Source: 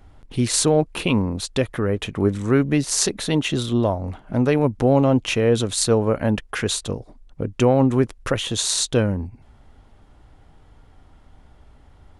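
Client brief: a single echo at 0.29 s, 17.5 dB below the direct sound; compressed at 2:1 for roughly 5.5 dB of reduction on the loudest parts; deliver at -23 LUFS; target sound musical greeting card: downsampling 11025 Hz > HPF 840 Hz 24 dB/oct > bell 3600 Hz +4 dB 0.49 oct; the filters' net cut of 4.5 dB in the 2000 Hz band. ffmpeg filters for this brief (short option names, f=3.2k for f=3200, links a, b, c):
-af "equalizer=f=2k:t=o:g=-7,acompressor=threshold=-22dB:ratio=2,aecho=1:1:290:0.133,aresample=11025,aresample=44100,highpass=f=840:w=0.5412,highpass=f=840:w=1.3066,equalizer=f=3.6k:t=o:w=0.49:g=4,volume=9dB"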